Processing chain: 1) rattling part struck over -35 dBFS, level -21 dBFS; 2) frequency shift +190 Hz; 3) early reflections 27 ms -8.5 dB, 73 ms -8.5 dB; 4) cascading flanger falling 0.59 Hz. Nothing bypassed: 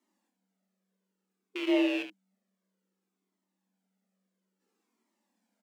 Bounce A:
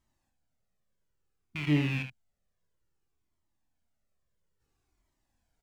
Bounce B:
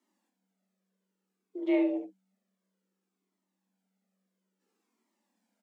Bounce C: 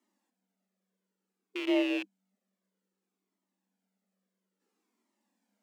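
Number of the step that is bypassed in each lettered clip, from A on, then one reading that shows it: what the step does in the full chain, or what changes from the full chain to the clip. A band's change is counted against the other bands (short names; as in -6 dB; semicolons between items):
2, 500 Hz band -8.0 dB; 1, 2 kHz band -8.0 dB; 3, momentary loudness spread change -1 LU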